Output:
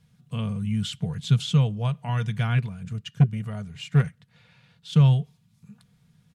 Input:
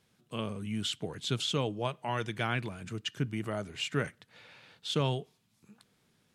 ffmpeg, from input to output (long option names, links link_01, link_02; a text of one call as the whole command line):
ffmpeg -i in.wav -filter_complex "[0:a]lowshelf=frequency=210:width_type=q:width=3:gain=12,aecho=1:1:4.2:0.37,asettb=1/sr,asplit=3[link_01][link_02][link_03];[link_01]atrim=end=2.584[link_04];[link_02]atrim=start=2.58:end=4.93,asetpts=PTS-STARTPTS,afade=type=in:duration=0.004:curve=qsin,afade=type=out:start_time=2.346:duration=0.004:curve=qsin,aeval=exprs='0.422*(cos(1*acos(clip(val(0)/0.422,-1,1)))-cos(1*PI/2))+0.0266*(cos(7*acos(clip(val(0)/0.422,-1,1)))-cos(7*PI/2))':channel_layout=same[link_05];[link_03]atrim=start=4.926[link_06];[link_04][link_05]acrossfade=duration=0.004:curve1=hsin:curve2=qsin[link_07];[link_07][link_06]acrossfade=duration=0.004:curve1=qsin:curve2=hsin" out.wav